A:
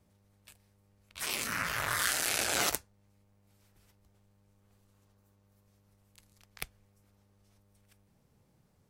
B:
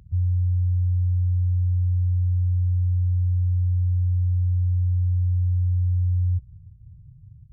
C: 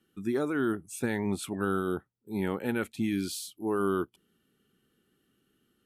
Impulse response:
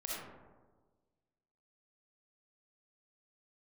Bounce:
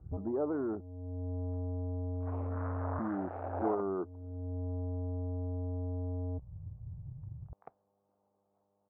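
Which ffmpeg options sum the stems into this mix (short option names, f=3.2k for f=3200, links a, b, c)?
-filter_complex "[0:a]highpass=170,adelay=1050,volume=-11.5dB[a];[1:a]adynamicequalizer=threshold=0.0158:dfrequency=110:dqfactor=0.75:tfrequency=110:tqfactor=0.75:attack=5:release=100:ratio=0.375:range=2:mode=cutabove:tftype=bell,asoftclip=type=tanh:threshold=-30dB,lowshelf=f=61:g=-7.5,volume=3dB[b];[2:a]lowpass=1.7k,alimiter=limit=-24dB:level=0:latency=1:release=233,volume=-2.5dB,asplit=3[c][d][e];[c]atrim=end=0.81,asetpts=PTS-STARTPTS,afade=t=out:st=0.806:d=0.004:c=hsin[f];[d]atrim=start=0.81:end=2.89,asetpts=PTS-STARTPTS,volume=0[g];[e]atrim=start=2.89,asetpts=PTS-STARTPTS,afade=t=in:d=0.004:c=hsin[h];[f][g][h]concat=n=3:v=0:a=1,asplit=2[i][j];[j]apad=whole_len=332045[k];[b][k]sidechaincompress=threshold=-55dB:ratio=6:attack=5.2:release=437[l];[l][i]amix=inputs=2:normalize=0,asoftclip=type=tanh:threshold=-27.5dB,acompressor=threshold=-37dB:ratio=4,volume=0dB[m];[a][m]amix=inputs=2:normalize=0,lowpass=f=1.1k:w=0.5412,lowpass=f=1.1k:w=1.3066,equalizer=f=720:t=o:w=1.9:g=13.5"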